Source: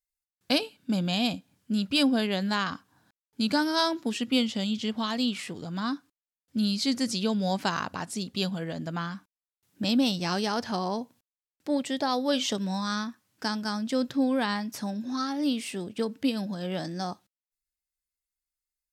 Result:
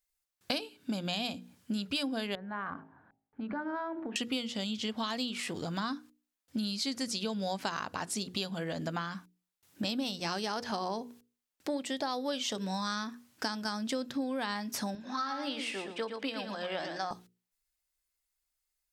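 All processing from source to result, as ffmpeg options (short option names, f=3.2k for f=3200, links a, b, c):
-filter_complex "[0:a]asettb=1/sr,asplit=3[a][b][c];[a]atrim=end=2.354[d];[b]atrim=start=2.35:end=4.16,asetpts=PTS-STARTPTS,afade=t=in:d=0.004:c=qsin,afade=t=out:st=1.806:d=0.004:c=qsin,lowpass=f=1.8k:w=0.5412,lowpass=f=1.8k:w=1.3066,bandreject=f=53.77:t=h:w=4,bandreject=f=107.54:t=h:w=4,bandreject=f=161.31:t=h:w=4,bandreject=f=215.08:t=h:w=4,bandreject=f=268.85:t=h:w=4,bandreject=f=322.62:t=h:w=4,bandreject=f=376.39:t=h:w=4,bandreject=f=430.16:t=h:w=4,bandreject=f=483.93:t=h:w=4,bandreject=f=537.7:t=h:w=4,bandreject=f=591.47:t=h:w=4,bandreject=f=645.24:t=h:w=4,bandreject=f=699.01:t=h:w=4,bandreject=f=752.78:t=h:w=4,bandreject=f=806.55:t=h:w=4,bandreject=f=860.32:t=h:w=4,bandreject=f=914.09:t=h:w=4,acompressor=threshold=-38dB:ratio=4:attack=3.2:release=140:knee=1:detection=peak[e];[c]atrim=start=4.156[f];[d][e]acrossfade=d=0.004:c1=hsin:c2=qsin[g];[g][f]acrossfade=d=0.004:c1=qsin:c2=hsin,asettb=1/sr,asplit=3[h][i][j];[h]atrim=end=14.954[k];[i]atrim=start=14.95:end=17.11,asetpts=PTS-STARTPTS,afade=t=in:d=0.004:c=qsin,afade=t=out:st=2.156:d=0.004:c=qsin,bandpass=f=1.4k:t=q:w=0.64,aecho=1:1:114|228|342:0.422|0.0675|0.0108,atrim=end_sample=95256[l];[j]atrim=start=17.106[m];[k][l]acrossfade=d=0.004:c1=hsin:c2=qsin[n];[n][m]acrossfade=d=0.004:c1=qsin:c2=hsin,equalizer=f=160:t=o:w=2:g=-5,bandreject=f=60:t=h:w=6,bandreject=f=120:t=h:w=6,bandreject=f=180:t=h:w=6,bandreject=f=240:t=h:w=6,bandreject=f=300:t=h:w=6,bandreject=f=360:t=h:w=6,bandreject=f=420:t=h:w=6,bandreject=f=480:t=h:w=6,acompressor=threshold=-38dB:ratio=5,volume=6dB"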